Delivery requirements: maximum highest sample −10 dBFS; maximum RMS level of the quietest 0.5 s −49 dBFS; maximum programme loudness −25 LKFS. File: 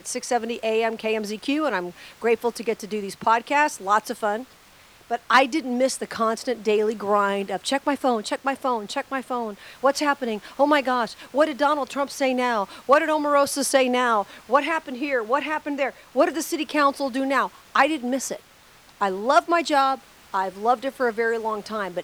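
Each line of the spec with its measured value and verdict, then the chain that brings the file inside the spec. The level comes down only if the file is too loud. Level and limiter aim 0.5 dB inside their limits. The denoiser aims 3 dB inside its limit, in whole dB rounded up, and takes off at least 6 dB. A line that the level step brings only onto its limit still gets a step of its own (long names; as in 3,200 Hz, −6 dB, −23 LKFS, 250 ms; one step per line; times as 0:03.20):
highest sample −4.5 dBFS: out of spec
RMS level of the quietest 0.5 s −52 dBFS: in spec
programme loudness −23.5 LKFS: out of spec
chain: level −2 dB
brickwall limiter −10.5 dBFS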